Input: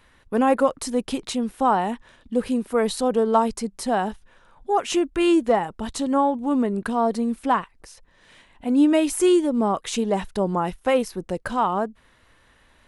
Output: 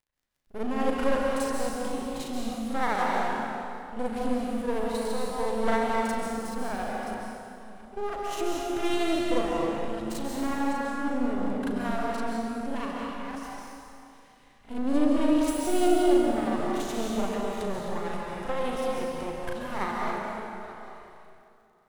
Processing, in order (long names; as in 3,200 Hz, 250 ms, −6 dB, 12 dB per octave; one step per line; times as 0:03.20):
delay that plays each chunk backwards 307 ms, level −13.5 dB
noise gate with hold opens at −44 dBFS
rotating-speaker cabinet horn 1.1 Hz, later 6 Hz, at 0:08.54
half-wave rectification
surface crackle 40 per second −56 dBFS
time stretch by overlap-add 1.7×, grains 177 ms
dense smooth reverb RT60 2.6 s, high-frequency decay 0.75×, pre-delay 120 ms, DRR −2.5 dB
level −2.5 dB